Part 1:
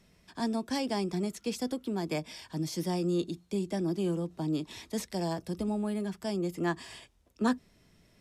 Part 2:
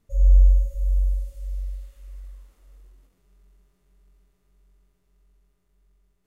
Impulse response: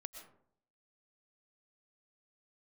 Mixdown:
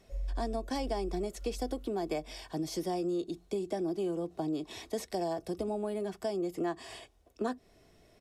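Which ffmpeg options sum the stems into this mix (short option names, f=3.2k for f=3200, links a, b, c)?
-filter_complex "[0:a]volume=-1dB[a];[1:a]acompressor=threshold=-22dB:ratio=6,volume=-12.5dB[b];[a][b]amix=inputs=2:normalize=0,equalizer=f=590:w=1.3:g=9.5,aecho=1:1:2.7:0.4,acompressor=threshold=-31dB:ratio=4"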